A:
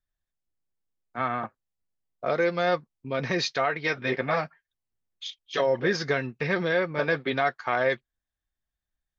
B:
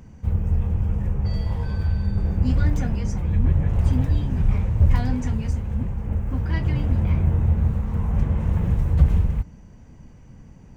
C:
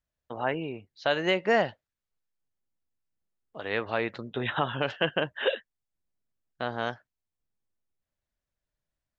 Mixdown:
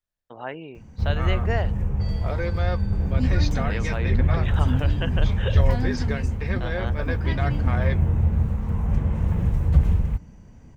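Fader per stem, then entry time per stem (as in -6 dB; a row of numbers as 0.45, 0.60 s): -6.0, -1.0, -4.5 dB; 0.00, 0.75, 0.00 s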